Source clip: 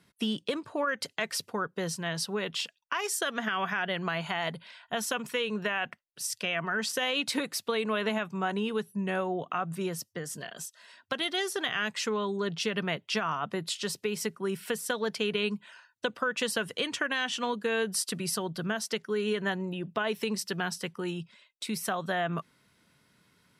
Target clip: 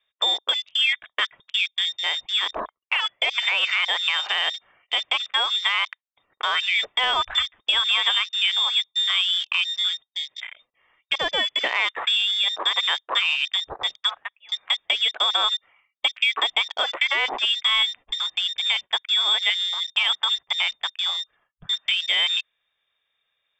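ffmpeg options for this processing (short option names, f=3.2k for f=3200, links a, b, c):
-filter_complex "[0:a]asettb=1/sr,asplit=3[a][b][c];[a]atrim=end=14.094[d];[b]atrim=start=14.09:end=14.52,asetpts=PTS-STARTPTS,afade=t=in:d=0.004:c=qsin,afade=t=out:st=0.426:d=0.004:c=qsin,highpass=870[e];[c]atrim=start=14.516[f];[d][e]acrossfade=d=0.004:c1=hsin:c2=qsin[g];[g][f]acrossfade=d=0.004:c1=qsin:c2=hsin,lowpass=f=3.2k:t=q:w=0.5098,lowpass=f=3.2k:t=q:w=0.6013,lowpass=f=3.2k:t=q:w=0.9,lowpass=f=3.2k:t=q:w=2.563,afreqshift=-3800,afwtdn=0.01,volume=8.5dB"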